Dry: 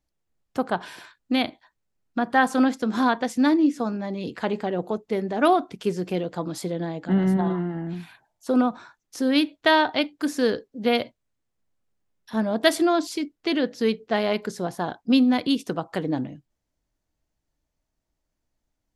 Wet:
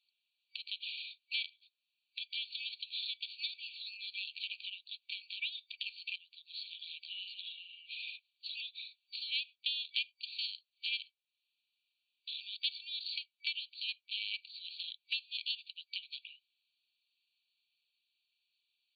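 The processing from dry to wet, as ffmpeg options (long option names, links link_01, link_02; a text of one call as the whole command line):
ffmpeg -i in.wav -filter_complex "[0:a]asettb=1/sr,asplit=3[link_01][link_02][link_03];[link_01]atrim=end=9.964[link_04];[link_02]atrim=start=9.96:end=10.46,asetpts=PTS-STARTPTS,afade=type=in:duration=0.004:curve=qsin,afade=type=out:start_time=0.496:duration=0.004:curve=qsin,equalizer=frequency=1600:width=0.41:gain=6[link_05];[link_03]atrim=start=10.456[link_06];[link_04][link_05]acrossfade=duration=0.004:curve1=hsin:curve2=qsin[link_07];[link_07][link_06]acrossfade=duration=0.004:curve1=qsin:curve2=hsin,asplit=2[link_08][link_09];[link_08]atrim=end=6.16,asetpts=PTS-STARTPTS,afade=type=out:start_time=6.156:duration=0.004:curve=hsin:silence=0.125893[link_10];[link_09]atrim=start=6.16,asetpts=PTS-STARTPTS,afade=type=in:duration=1.48:silence=0.125893[link_11];[link_10][link_11]concat=n=2:v=0:a=1,afftfilt=real='re*between(b*sr/4096,2300,4600)':imag='im*between(b*sr/4096,2300,4600)':win_size=4096:overlap=0.75,acompressor=threshold=-54dB:ratio=3,volume=13dB" out.wav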